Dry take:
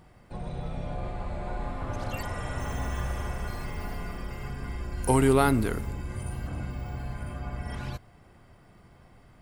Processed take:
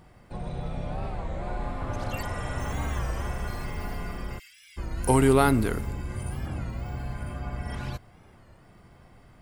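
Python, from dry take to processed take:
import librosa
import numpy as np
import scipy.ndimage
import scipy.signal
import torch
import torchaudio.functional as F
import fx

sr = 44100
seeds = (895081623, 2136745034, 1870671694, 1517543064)

y = fx.cheby2_highpass(x, sr, hz=900.0, order=4, stop_db=50, at=(4.38, 4.78), fade=0.02)
y = fx.record_warp(y, sr, rpm=33.33, depth_cents=160.0)
y = y * 10.0 ** (1.5 / 20.0)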